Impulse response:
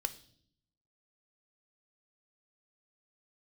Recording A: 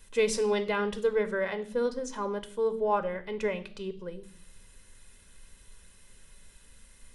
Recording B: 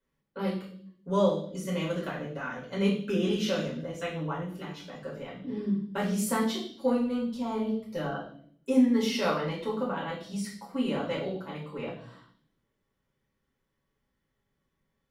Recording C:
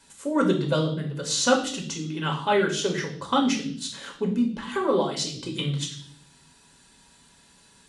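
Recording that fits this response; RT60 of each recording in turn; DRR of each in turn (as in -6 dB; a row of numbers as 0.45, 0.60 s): A; 0.60, 0.60, 0.60 s; 10.0, -6.0, 1.0 dB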